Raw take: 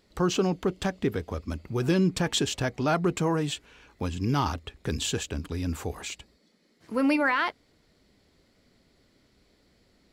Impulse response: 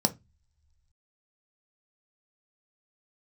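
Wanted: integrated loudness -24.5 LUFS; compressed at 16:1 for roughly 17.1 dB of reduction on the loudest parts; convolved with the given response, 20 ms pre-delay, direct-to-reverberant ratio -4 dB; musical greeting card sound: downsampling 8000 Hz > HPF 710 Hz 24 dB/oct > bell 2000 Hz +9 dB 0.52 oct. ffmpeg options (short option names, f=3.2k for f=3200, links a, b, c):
-filter_complex "[0:a]acompressor=threshold=-37dB:ratio=16,asplit=2[a][b];[1:a]atrim=start_sample=2205,adelay=20[c];[b][c]afir=irnorm=-1:irlink=0,volume=-5dB[d];[a][d]amix=inputs=2:normalize=0,aresample=8000,aresample=44100,highpass=f=710:w=0.5412,highpass=f=710:w=1.3066,equalizer=f=2k:t=o:w=0.52:g=9,volume=17dB"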